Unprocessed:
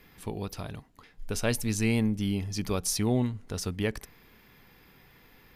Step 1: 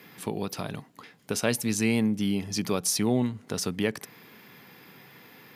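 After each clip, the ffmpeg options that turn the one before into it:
ffmpeg -i in.wav -filter_complex "[0:a]highpass=frequency=130:width=0.5412,highpass=frequency=130:width=1.3066,asplit=2[link_01][link_02];[link_02]acompressor=threshold=-36dB:ratio=6,volume=2dB[link_03];[link_01][link_03]amix=inputs=2:normalize=0" out.wav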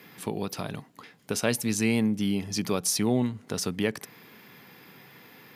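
ffmpeg -i in.wav -af anull out.wav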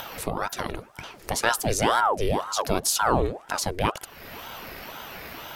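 ffmpeg -i in.wav -af "acompressor=mode=upward:threshold=-31dB:ratio=2.5,bandreject=frequency=3200:width=9.5,aeval=exprs='val(0)*sin(2*PI*680*n/s+680*0.75/2*sin(2*PI*2*n/s))':channel_layout=same,volume=5.5dB" out.wav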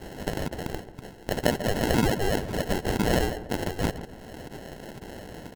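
ffmpeg -i in.wav -filter_complex "[0:a]acrusher=samples=37:mix=1:aa=0.000001,asplit=2[link_01][link_02];[link_02]adelay=141,lowpass=frequency=1600:poles=1,volume=-12.5dB,asplit=2[link_03][link_04];[link_04]adelay=141,lowpass=frequency=1600:poles=1,volume=0.48,asplit=2[link_05][link_06];[link_06]adelay=141,lowpass=frequency=1600:poles=1,volume=0.48,asplit=2[link_07][link_08];[link_08]adelay=141,lowpass=frequency=1600:poles=1,volume=0.48,asplit=2[link_09][link_10];[link_10]adelay=141,lowpass=frequency=1600:poles=1,volume=0.48[link_11];[link_01][link_03][link_05][link_07][link_09][link_11]amix=inputs=6:normalize=0,volume=-1.5dB" out.wav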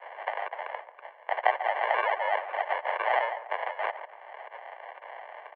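ffmpeg -i in.wav -filter_complex "[0:a]asplit=2[link_01][link_02];[link_02]acrusher=bits=5:mix=0:aa=0.5,volume=-7.5dB[link_03];[link_01][link_03]amix=inputs=2:normalize=0,highpass=frequency=500:width_type=q:width=0.5412,highpass=frequency=500:width_type=q:width=1.307,lowpass=frequency=2400:width_type=q:width=0.5176,lowpass=frequency=2400:width_type=q:width=0.7071,lowpass=frequency=2400:width_type=q:width=1.932,afreqshift=150" out.wav

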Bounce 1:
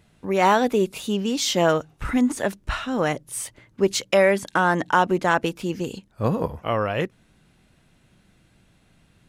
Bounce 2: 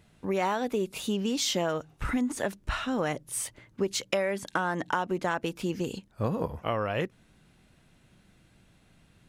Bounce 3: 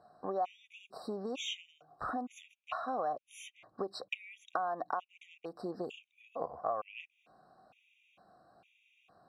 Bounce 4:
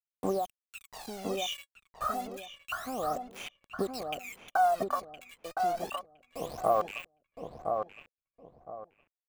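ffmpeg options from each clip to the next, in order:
ffmpeg -i in.wav -af "acompressor=threshold=-23dB:ratio=5,volume=-2dB" out.wav
ffmpeg -i in.wav -filter_complex "[0:a]asplit=3[link_01][link_02][link_03];[link_01]bandpass=frequency=730:width_type=q:width=8,volume=0dB[link_04];[link_02]bandpass=frequency=1090:width_type=q:width=8,volume=-6dB[link_05];[link_03]bandpass=frequency=2440:width_type=q:width=8,volume=-9dB[link_06];[link_04][link_05][link_06]amix=inputs=3:normalize=0,acompressor=threshold=-51dB:ratio=3,afftfilt=real='re*gt(sin(2*PI*1.1*pts/sr)*(1-2*mod(floor(b*sr/1024/1900),2)),0)':imag='im*gt(sin(2*PI*1.1*pts/sr)*(1-2*mod(floor(b*sr/1024/1900),2)),0)':win_size=1024:overlap=0.75,volume=15.5dB" out.wav
ffmpeg -i in.wav -filter_complex "[0:a]acrusher=bits=7:mix=0:aa=0.000001,aphaser=in_gain=1:out_gain=1:delay=1.8:decay=0.78:speed=0.29:type=sinusoidal,asplit=2[link_01][link_02];[link_02]adelay=1014,lowpass=frequency=1100:poles=1,volume=-3.5dB,asplit=2[link_03][link_04];[link_04]adelay=1014,lowpass=frequency=1100:poles=1,volume=0.29,asplit=2[link_05][link_06];[link_06]adelay=1014,lowpass=frequency=1100:poles=1,volume=0.29,asplit=2[link_07][link_08];[link_08]adelay=1014,lowpass=frequency=1100:poles=1,volume=0.29[link_09];[link_03][link_05][link_07][link_09]amix=inputs=4:normalize=0[link_10];[link_01][link_10]amix=inputs=2:normalize=0" out.wav

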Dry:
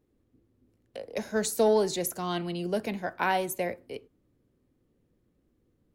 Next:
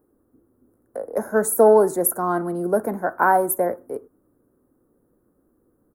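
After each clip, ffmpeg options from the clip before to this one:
ffmpeg -i in.wav -af "firequalizer=gain_entry='entry(120,0);entry(280,9);entry(1400,12);entry(2700,-27);entry(9900,13)':delay=0.05:min_phase=1" out.wav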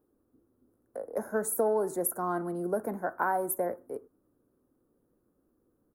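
ffmpeg -i in.wav -af "acompressor=threshold=-17dB:ratio=3,volume=-8dB" out.wav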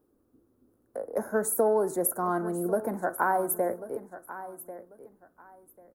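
ffmpeg -i in.wav -af "aecho=1:1:1092|2184:0.188|0.0414,volume=3dB" out.wav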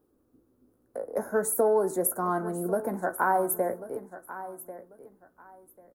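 ffmpeg -i in.wav -filter_complex "[0:a]asplit=2[link_01][link_02];[link_02]adelay=16,volume=-11dB[link_03];[link_01][link_03]amix=inputs=2:normalize=0" out.wav

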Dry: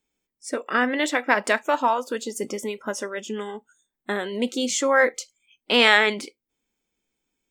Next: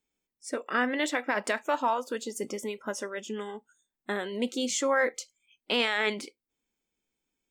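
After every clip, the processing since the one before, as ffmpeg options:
ffmpeg -i in.wav -af "alimiter=limit=-11.5dB:level=0:latency=1:release=29,volume=-5dB" out.wav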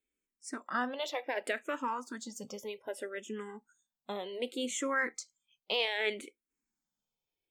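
ffmpeg -i in.wav -filter_complex "[0:a]asplit=2[link_01][link_02];[link_02]afreqshift=-0.65[link_03];[link_01][link_03]amix=inputs=2:normalize=1,volume=-3dB" out.wav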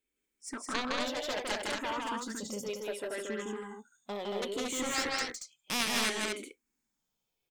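ffmpeg -i in.wav -af "aeval=exprs='0.133*(cos(1*acos(clip(val(0)/0.133,-1,1)))-cos(1*PI/2))+0.0422*(cos(3*acos(clip(val(0)/0.133,-1,1)))-cos(3*PI/2))+0.00422*(cos(4*acos(clip(val(0)/0.133,-1,1)))-cos(4*PI/2))+0.015*(cos(7*acos(clip(val(0)/0.133,-1,1)))-cos(7*PI/2))':channel_layout=same,aecho=1:1:160.3|230.3:0.794|0.708,volume=5dB" out.wav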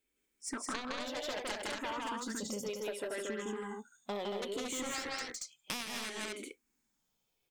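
ffmpeg -i in.wav -af "acompressor=threshold=-38dB:ratio=12,volume=3dB" out.wav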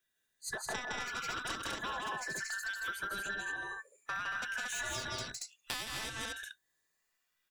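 ffmpeg -i in.wav -af "afftfilt=real='real(if(between(b,1,1012),(2*floor((b-1)/92)+1)*92-b,b),0)':imag='imag(if(between(b,1,1012),(2*floor((b-1)/92)+1)*92-b,b),0)*if(between(b,1,1012),-1,1)':win_size=2048:overlap=0.75" out.wav

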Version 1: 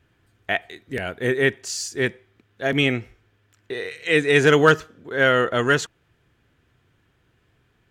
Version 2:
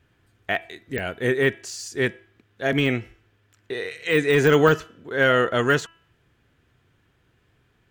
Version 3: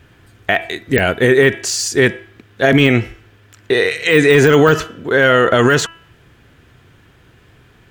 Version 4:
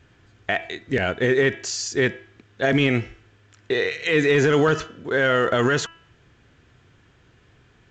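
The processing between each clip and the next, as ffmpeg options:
ffmpeg -i in.wav -af "bandreject=frequency=331.3:width_type=h:width=4,bandreject=frequency=662.6:width_type=h:width=4,bandreject=frequency=993.9:width_type=h:width=4,bandreject=frequency=1325.2:width_type=h:width=4,bandreject=frequency=1656.5:width_type=h:width=4,bandreject=frequency=1987.8:width_type=h:width=4,bandreject=frequency=2319.1:width_type=h:width=4,bandreject=frequency=2650.4:width_type=h:width=4,bandreject=frequency=2981.7:width_type=h:width=4,deesser=0.65" out.wav
ffmpeg -i in.wav -af "alimiter=level_in=16.5dB:limit=-1dB:release=50:level=0:latency=1,volume=-1dB" out.wav
ffmpeg -i in.wav -af "volume=-8dB" -ar 16000 -c:a pcm_alaw out.wav

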